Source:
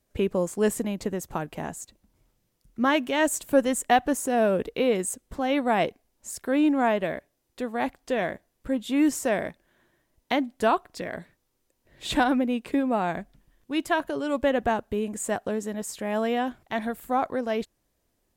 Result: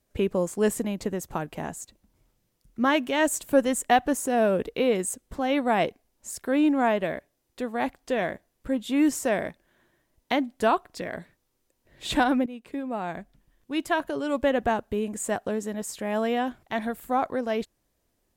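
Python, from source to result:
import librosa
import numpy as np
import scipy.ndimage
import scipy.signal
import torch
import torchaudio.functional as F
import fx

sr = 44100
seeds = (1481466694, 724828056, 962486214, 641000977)

y = fx.edit(x, sr, fx.fade_in_from(start_s=12.46, length_s=2.03, curve='qsin', floor_db=-14.0), tone=tone)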